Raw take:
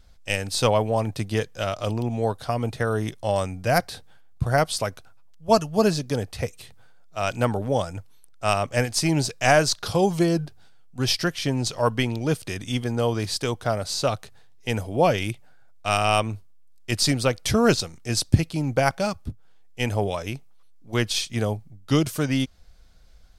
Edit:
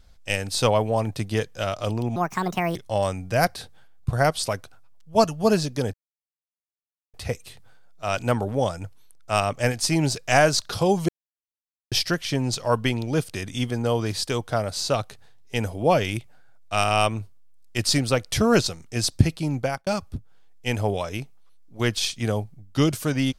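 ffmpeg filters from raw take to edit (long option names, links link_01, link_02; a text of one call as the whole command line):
ffmpeg -i in.wav -filter_complex "[0:a]asplit=7[link_01][link_02][link_03][link_04][link_05][link_06][link_07];[link_01]atrim=end=2.164[link_08];[link_02]atrim=start=2.16:end=3.09,asetpts=PTS-STARTPTS,asetrate=68796,aresample=44100,atrim=end_sample=26290,asetpts=PTS-STARTPTS[link_09];[link_03]atrim=start=3.086:end=6.27,asetpts=PTS-STARTPTS,afade=type=out:start_time=3.18:duration=0.004:curve=hsin,apad=pad_dur=1.2[link_10];[link_04]atrim=start=6.27:end=10.22,asetpts=PTS-STARTPTS,afade=type=in:duration=0.004:curve=hsin,afade=type=out:start_time=3.946:duration=0.004:curve=hsin[link_11];[link_05]atrim=start=10.22:end=11.05,asetpts=PTS-STARTPTS,volume=0[link_12];[link_06]atrim=start=11.05:end=19,asetpts=PTS-STARTPTS,afade=type=in:duration=0.004:curve=hsin,afade=type=out:start_time=7.61:duration=0.34[link_13];[link_07]atrim=start=19,asetpts=PTS-STARTPTS,afade=type=in:duration=0.004:curve=hsin[link_14];[link_08][link_09]acrossfade=duration=0.004:curve1=hsin:curve2=hsin[link_15];[link_10][link_11][link_12][link_13][link_14]concat=n=5:v=0:a=1[link_16];[link_15][link_16]acrossfade=duration=0.004:curve1=hsin:curve2=hsin" out.wav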